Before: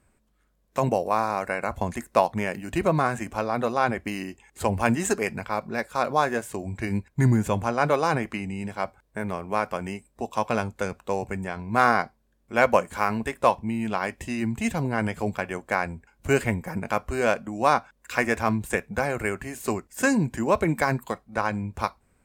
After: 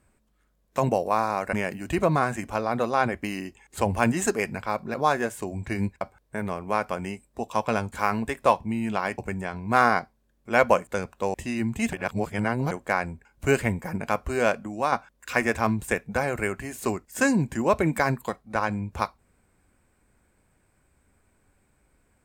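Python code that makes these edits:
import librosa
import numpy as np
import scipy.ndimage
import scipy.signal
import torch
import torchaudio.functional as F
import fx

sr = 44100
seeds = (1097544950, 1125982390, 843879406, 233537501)

y = fx.edit(x, sr, fx.cut(start_s=1.53, length_s=0.83),
    fx.cut(start_s=5.77, length_s=0.29),
    fx.cut(start_s=7.13, length_s=1.7),
    fx.swap(start_s=10.74, length_s=0.47, other_s=12.9, other_length_s=1.26),
    fx.reverse_span(start_s=14.75, length_s=0.78),
    fx.fade_out_to(start_s=17.42, length_s=0.32, floor_db=-7.0), tone=tone)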